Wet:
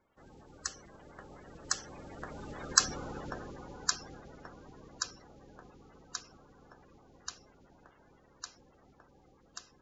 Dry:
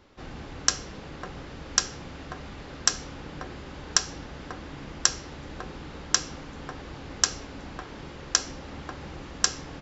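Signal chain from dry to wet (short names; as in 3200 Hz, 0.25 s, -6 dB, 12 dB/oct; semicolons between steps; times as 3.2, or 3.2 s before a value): bin magnitudes rounded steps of 30 dB; Doppler pass-by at 2.89, 13 m/s, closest 5.9 m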